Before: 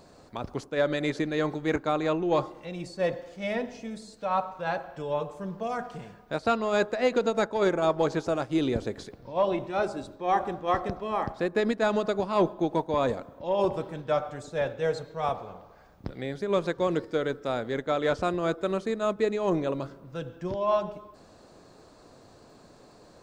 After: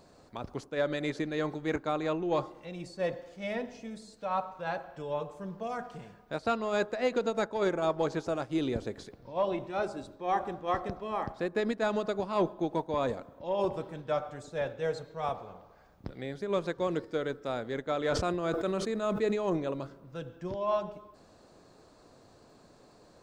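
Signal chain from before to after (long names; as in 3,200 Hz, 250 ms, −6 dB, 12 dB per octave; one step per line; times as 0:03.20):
0:17.97–0:19.57: level that may fall only so fast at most 37 dB per second
level −4.5 dB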